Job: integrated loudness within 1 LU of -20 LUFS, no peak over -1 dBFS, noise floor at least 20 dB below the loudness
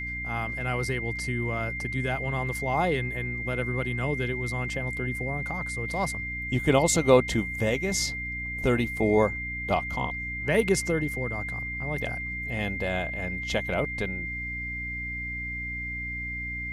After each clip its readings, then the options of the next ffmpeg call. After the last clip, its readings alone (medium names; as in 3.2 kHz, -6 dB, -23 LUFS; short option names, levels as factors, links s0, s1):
hum 60 Hz; highest harmonic 300 Hz; hum level -36 dBFS; steady tone 2.1 kHz; tone level -32 dBFS; loudness -28.0 LUFS; peak level -6.0 dBFS; loudness target -20.0 LUFS
-> -af "bandreject=f=60:t=h:w=6,bandreject=f=120:t=h:w=6,bandreject=f=180:t=h:w=6,bandreject=f=240:t=h:w=6,bandreject=f=300:t=h:w=6"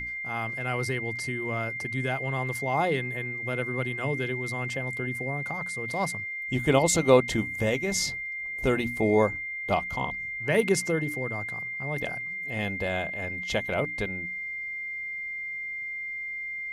hum not found; steady tone 2.1 kHz; tone level -32 dBFS
-> -af "bandreject=f=2100:w=30"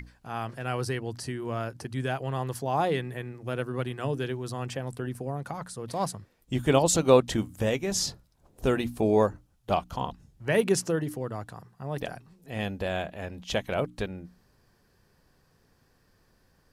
steady tone not found; loudness -29.5 LUFS; peak level -6.5 dBFS; loudness target -20.0 LUFS
-> -af "volume=2.99,alimiter=limit=0.891:level=0:latency=1"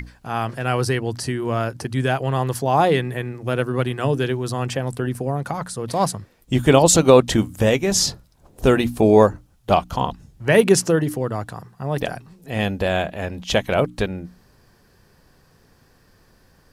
loudness -20.5 LUFS; peak level -1.0 dBFS; noise floor -57 dBFS